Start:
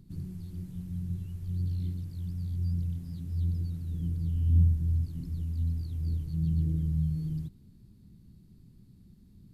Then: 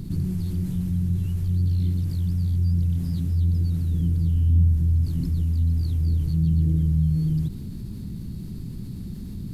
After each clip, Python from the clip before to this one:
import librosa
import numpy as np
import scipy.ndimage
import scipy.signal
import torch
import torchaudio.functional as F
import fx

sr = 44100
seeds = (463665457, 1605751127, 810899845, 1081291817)

y = fx.env_flatten(x, sr, amount_pct=50)
y = F.gain(torch.from_numpy(y), 3.5).numpy()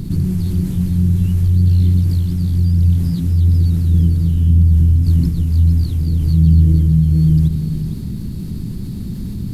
y = x + 10.0 ** (-7.5 / 20.0) * np.pad(x, (int(457 * sr / 1000.0), 0))[:len(x)]
y = F.gain(torch.from_numpy(y), 8.5).numpy()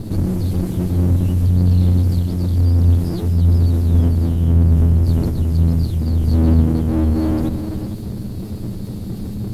y = fx.lower_of_two(x, sr, delay_ms=9.6)